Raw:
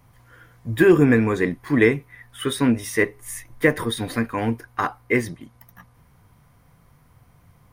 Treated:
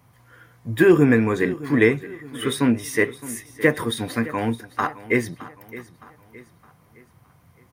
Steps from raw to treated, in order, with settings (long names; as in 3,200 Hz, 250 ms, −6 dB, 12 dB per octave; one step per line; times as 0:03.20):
high-pass filter 86 Hz
on a send: repeating echo 615 ms, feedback 43%, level −17 dB